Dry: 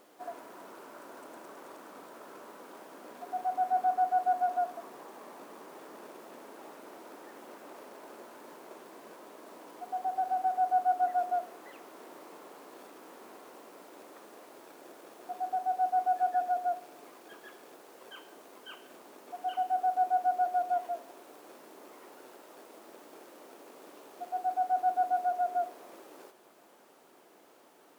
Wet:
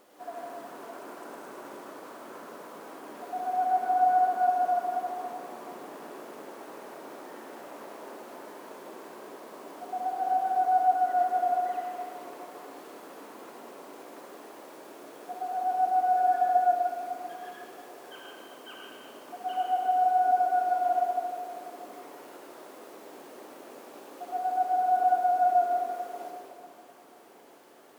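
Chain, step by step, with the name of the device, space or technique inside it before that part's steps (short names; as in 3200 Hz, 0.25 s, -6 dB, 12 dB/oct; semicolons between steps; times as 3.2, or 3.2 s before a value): stairwell (reverb RT60 2.5 s, pre-delay 65 ms, DRR -3 dB)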